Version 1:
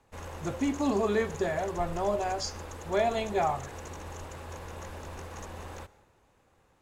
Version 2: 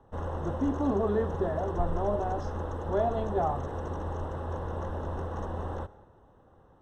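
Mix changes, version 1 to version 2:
background +8.5 dB; master: add running mean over 19 samples

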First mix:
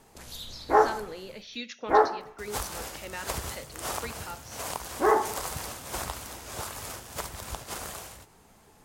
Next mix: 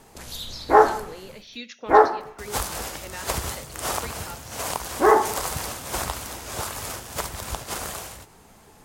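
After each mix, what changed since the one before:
background +6.0 dB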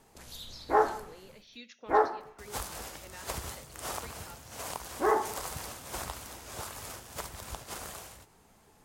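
speech -11.0 dB; background -10.0 dB

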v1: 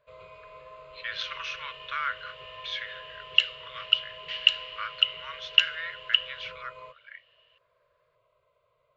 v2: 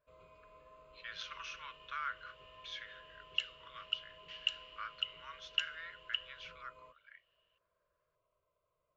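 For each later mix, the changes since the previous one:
first sound -3.5 dB; second sound -4.0 dB; master: add graphic EQ 125/250/500/1000/2000/4000 Hz -11/+11/-11/-4/-10/-10 dB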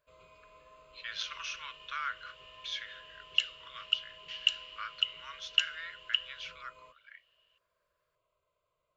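master: add high shelf 2200 Hz +11.5 dB

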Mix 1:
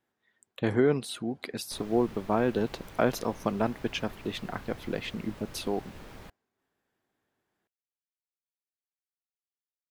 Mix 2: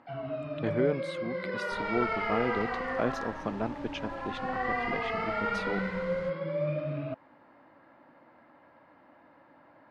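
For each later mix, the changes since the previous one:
speech -4.5 dB; first sound: unmuted; master: add air absorption 100 m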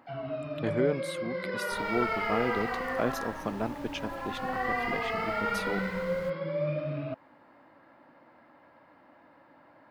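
master: remove air absorption 100 m

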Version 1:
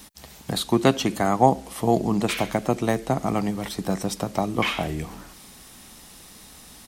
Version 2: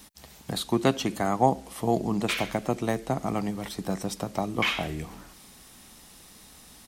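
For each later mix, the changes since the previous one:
speech -4.5 dB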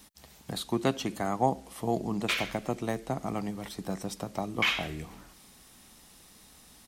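speech -4.5 dB

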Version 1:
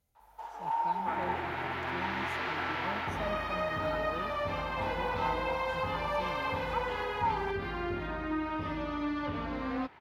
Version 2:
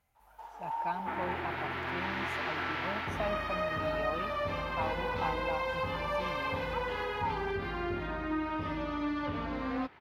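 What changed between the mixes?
speech: add band shelf 1400 Hz +10 dB 2.3 oct; first sound -4.5 dB

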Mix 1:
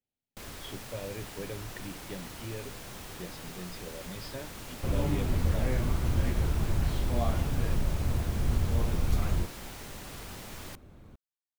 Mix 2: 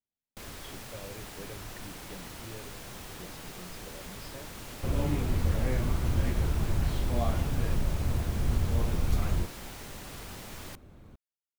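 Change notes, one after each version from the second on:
speech -6.0 dB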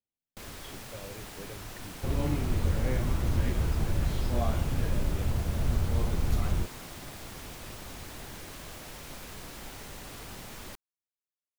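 second sound: entry -2.80 s

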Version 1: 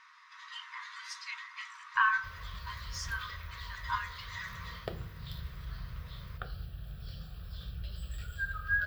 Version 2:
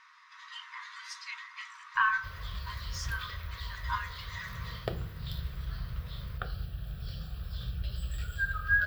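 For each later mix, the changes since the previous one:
background +4.0 dB; master: remove notches 60/120 Hz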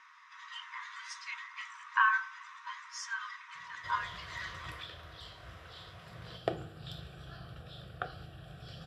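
background: entry +1.60 s; master: add speaker cabinet 160–9500 Hz, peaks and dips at 210 Hz -5 dB, 320 Hz +7 dB, 720 Hz +8 dB, 4400 Hz -7 dB

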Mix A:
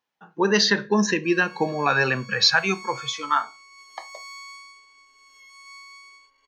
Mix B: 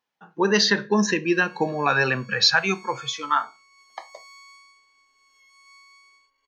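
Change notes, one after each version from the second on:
background -7.5 dB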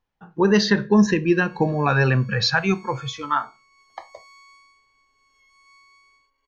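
speech: remove HPF 180 Hz 12 dB/oct; master: add tilt -2 dB/oct

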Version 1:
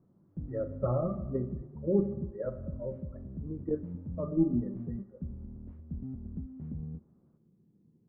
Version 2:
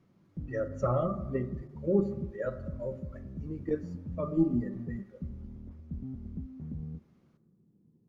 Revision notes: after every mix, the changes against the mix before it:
speech: remove Gaussian blur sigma 7.5 samples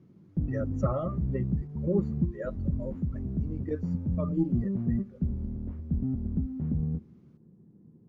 speech: send off; background +10.0 dB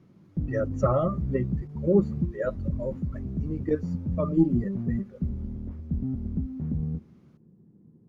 speech +7.0 dB

